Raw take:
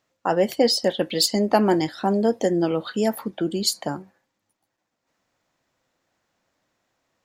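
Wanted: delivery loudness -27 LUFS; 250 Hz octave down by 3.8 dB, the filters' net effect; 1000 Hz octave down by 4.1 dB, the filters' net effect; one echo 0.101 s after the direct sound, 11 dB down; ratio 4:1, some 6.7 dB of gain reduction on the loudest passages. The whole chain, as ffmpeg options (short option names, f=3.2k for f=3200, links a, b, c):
-af "equalizer=f=250:t=o:g=-5,equalizer=f=1k:t=o:g=-5.5,acompressor=threshold=-24dB:ratio=4,aecho=1:1:101:0.282,volume=1.5dB"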